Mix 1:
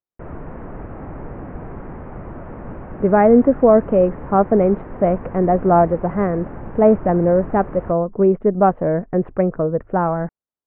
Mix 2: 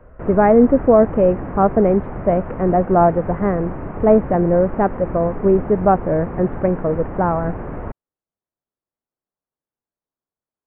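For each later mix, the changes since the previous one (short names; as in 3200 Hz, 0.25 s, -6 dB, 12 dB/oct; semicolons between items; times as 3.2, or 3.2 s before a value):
speech: entry -2.75 s; background +4.5 dB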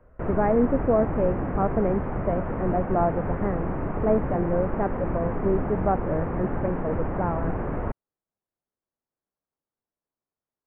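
speech -10.0 dB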